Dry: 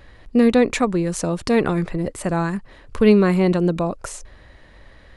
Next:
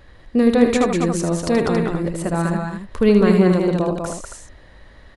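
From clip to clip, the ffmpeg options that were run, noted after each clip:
-filter_complex "[0:a]equalizer=f=2.4k:w=2.7:g=-3,asplit=2[a][b];[b]aecho=0:1:77|196|275:0.422|0.596|0.376[c];[a][c]amix=inputs=2:normalize=0,volume=-1dB"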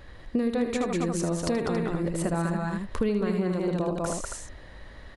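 -af "acompressor=threshold=-24dB:ratio=6"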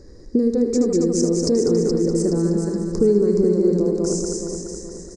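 -af "firequalizer=gain_entry='entry(150,0);entry(220,5);entry(420,11);entry(660,-10);entry(1400,-13);entry(2000,-15);entry(3100,-29);entry(5000,11);entry(7400,7);entry(11000,-13)':delay=0.05:min_phase=1,aecho=1:1:422|844|1266|1688|2110:0.473|0.203|0.0875|0.0376|0.0162,volume=2dB"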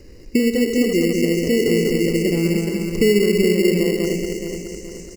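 -filter_complex "[0:a]acrossover=split=600|760[a][b][c];[a]acrusher=samples=18:mix=1:aa=0.000001[d];[c]acompressor=threshold=-40dB:ratio=6[e];[d][b][e]amix=inputs=3:normalize=0,volume=1dB"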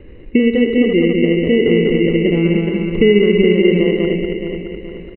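-af "aresample=8000,aresample=44100,volume=4.5dB"

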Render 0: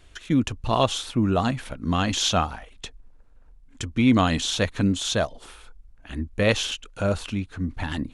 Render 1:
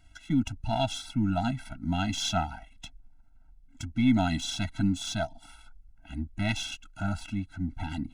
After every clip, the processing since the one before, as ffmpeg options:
-af "aeval=exprs='if(lt(val(0),0),0.708*val(0),val(0))':c=same,afftfilt=real='re*eq(mod(floor(b*sr/1024/320),2),0)':imag='im*eq(mod(floor(b*sr/1024/320),2),0)':win_size=1024:overlap=0.75,volume=-3dB"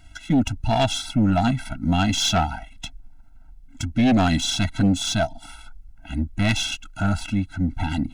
-af "aeval=exprs='0.211*sin(PI/2*2*val(0)/0.211)':c=same"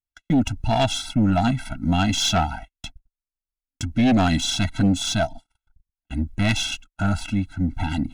-af "agate=range=-49dB:threshold=-34dB:ratio=16:detection=peak"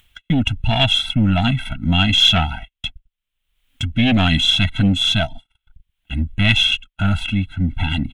-af "firequalizer=gain_entry='entry(150,0);entry(330,-9);entry(480,-6);entry(740,-7);entry(3200,9);entry(4700,-13);entry(8700,-8)':delay=0.05:min_phase=1,acompressor=mode=upward:threshold=-39dB:ratio=2.5,volume=5.5dB"

